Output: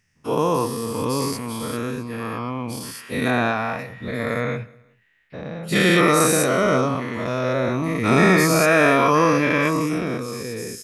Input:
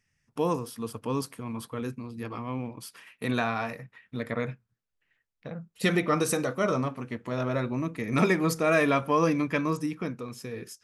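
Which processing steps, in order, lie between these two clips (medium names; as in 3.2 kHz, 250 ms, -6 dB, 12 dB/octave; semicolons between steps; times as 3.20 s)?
every event in the spectrogram widened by 240 ms; 3.30–3.79 s: treble shelf 4.3 kHz -8 dB; feedback delay 186 ms, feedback 38%, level -24 dB; trim +2 dB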